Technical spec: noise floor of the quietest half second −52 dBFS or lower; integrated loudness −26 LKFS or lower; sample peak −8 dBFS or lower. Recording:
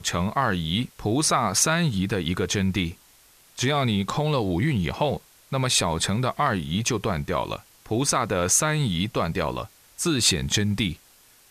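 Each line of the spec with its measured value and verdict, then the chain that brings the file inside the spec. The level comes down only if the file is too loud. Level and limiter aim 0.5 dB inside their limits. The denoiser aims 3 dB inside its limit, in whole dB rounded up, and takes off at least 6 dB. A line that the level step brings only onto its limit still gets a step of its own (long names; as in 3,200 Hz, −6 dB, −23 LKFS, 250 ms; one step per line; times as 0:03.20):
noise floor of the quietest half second −55 dBFS: in spec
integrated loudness −24.0 LKFS: out of spec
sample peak −7.0 dBFS: out of spec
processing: level −2.5 dB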